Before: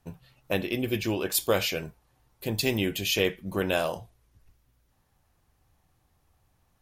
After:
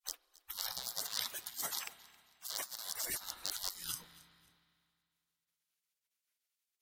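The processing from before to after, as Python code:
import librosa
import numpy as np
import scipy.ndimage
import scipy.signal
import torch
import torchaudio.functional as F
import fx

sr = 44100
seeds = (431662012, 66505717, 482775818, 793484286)

y = fx.rattle_buzz(x, sr, strikes_db=-36.0, level_db=-17.0)
y = fx.noise_reduce_blind(y, sr, reduce_db=23)
y = fx.spec_gate(y, sr, threshold_db=-30, keep='weak')
y = fx.highpass(y, sr, hz=220.0, slope=6, at=(0.91, 2.93))
y = fx.rev_spring(y, sr, rt60_s=2.3, pass_ms=(30, 45), chirp_ms=35, drr_db=17.5)
y = fx.over_compress(y, sr, threshold_db=-52.0, ratio=-0.5)
y = fx.echo_feedback(y, sr, ms=270, feedback_pct=32, wet_db=-22)
y = y * librosa.db_to_amplitude(11.5)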